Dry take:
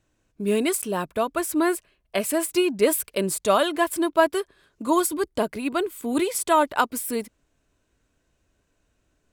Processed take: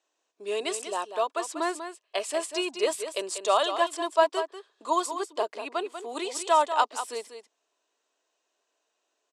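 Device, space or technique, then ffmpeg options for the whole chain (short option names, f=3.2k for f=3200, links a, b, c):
phone speaker on a table: -filter_complex "[0:a]highpass=f=470:w=0.5412,highpass=f=470:w=1.3066,equalizer=f=540:t=q:w=4:g=-6,equalizer=f=1.5k:t=q:w=4:g=-8,equalizer=f=2.2k:t=q:w=4:g=-7,lowpass=f=7.5k:w=0.5412,lowpass=f=7.5k:w=1.3066,aecho=1:1:192:0.335,asplit=3[a][b][c];[a]afade=t=out:st=4.41:d=0.02[d];[b]adynamicequalizer=threshold=0.00631:dfrequency=2600:dqfactor=0.7:tfrequency=2600:tqfactor=0.7:attack=5:release=100:ratio=0.375:range=3:mode=cutabove:tftype=highshelf,afade=t=in:st=4.41:d=0.02,afade=t=out:st=6.21:d=0.02[e];[c]afade=t=in:st=6.21:d=0.02[f];[d][e][f]amix=inputs=3:normalize=0"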